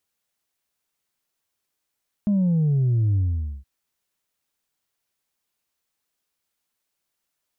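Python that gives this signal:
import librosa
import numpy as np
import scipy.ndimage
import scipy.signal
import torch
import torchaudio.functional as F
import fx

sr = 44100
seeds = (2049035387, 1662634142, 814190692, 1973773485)

y = fx.sub_drop(sr, level_db=-17.5, start_hz=210.0, length_s=1.37, drive_db=1.5, fade_s=0.48, end_hz=65.0)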